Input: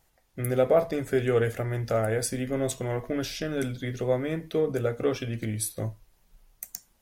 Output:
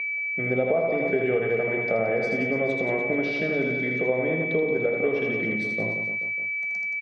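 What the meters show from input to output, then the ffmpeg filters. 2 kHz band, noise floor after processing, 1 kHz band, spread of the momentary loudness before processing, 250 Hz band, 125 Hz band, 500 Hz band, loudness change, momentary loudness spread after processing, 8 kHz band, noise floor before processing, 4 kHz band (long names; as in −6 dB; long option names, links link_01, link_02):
+14.5 dB, −29 dBFS, +1.0 dB, 11 LU, +2.5 dB, −4.5 dB, +2.5 dB, +3.5 dB, 3 LU, below −20 dB, −66 dBFS, −5.0 dB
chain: -af "aecho=1:1:80|176|291.2|429.4|595.3:0.631|0.398|0.251|0.158|0.1,aeval=exprs='val(0)+0.0447*sin(2*PI*2300*n/s)':channel_layout=same,highpass=frequency=150:width=0.5412,highpass=frequency=150:width=1.3066,equalizer=frequency=180:width_type=q:width=4:gain=5,equalizer=frequency=440:width_type=q:width=4:gain=4,equalizer=frequency=690:width_type=q:width=4:gain=4,equalizer=frequency=1400:width_type=q:width=4:gain=-8,equalizer=frequency=3300:width_type=q:width=4:gain=-5,lowpass=frequency=3600:width=0.5412,lowpass=frequency=3600:width=1.3066,acompressor=threshold=-22dB:ratio=6,volume=2dB"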